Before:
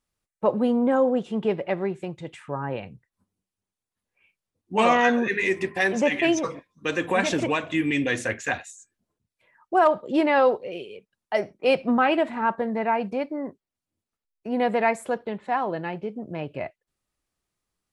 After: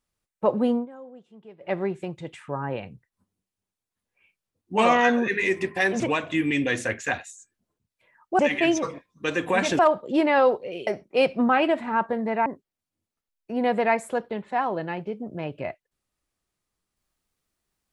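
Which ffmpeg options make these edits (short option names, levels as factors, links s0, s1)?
-filter_complex "[0:a]asplit=8[s0][s1][s2][s3][s4][s5][s6][s7];[s0]atrim=end=0.86,asetpts=PTS-STARTPTS,afade=t=out:st=0.69:d=0.17:c=qsin:silence=0.0749894[s8];[s1]atrim=start=0.86:end=1.6,asetpts=PTS-STARTPTS,volume=0.075[s9];[s2]atrim=start=1.6:end=6.002,asetpts=PTS-STARTPTS,afade=t=in:d=0.17:c=qsin:silence=0.0749894[s10];[s3]atrim=start=7.398:end=9.792[s11];[s4]atrim=start=5.998:end=7.402[s12];[s5]atrim=start=9.788:end=10.872[s13];[s6]atrim=start=11.358:end=12.952[s14];[s7]atrim=start=13.418[s15];[s8][s9][s10]concat=n=3:v=0:a=1[s16];[s16][s11]acrossfade=d=0.004:c1=hsin:c2=hsin[s17];[s17][s12]acrossfade=d=0.004:c1=hsin:c2=hsin[s18];[s18][s13]acrossfade=d=0.004:c1=hsin:c2=hsin[s19];[s19][s14]acrossfade=d=0.004:c1=hsin:c2=hsin[s20];[s20][s15]acrossfade=d=0.004:c1=hsin:c2=hsin"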